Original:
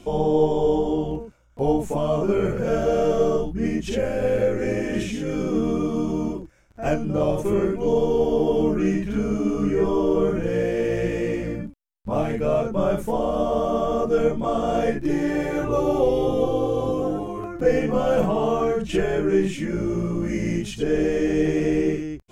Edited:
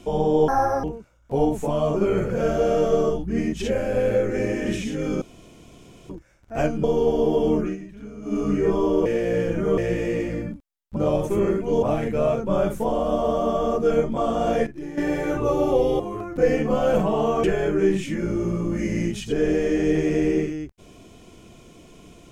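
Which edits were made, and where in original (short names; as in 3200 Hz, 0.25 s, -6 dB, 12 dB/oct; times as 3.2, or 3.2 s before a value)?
0.48–1.11 speed 177%
5.49–6.37 room tone
7.11–7.97 move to 12.1
8.73–9.52 dip -14.5 dB, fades 0.17 s
10.19–10.91 reverse
14.94–15.25 gain -11 dB
16.27–17.23 cut
18.67–18.94 cut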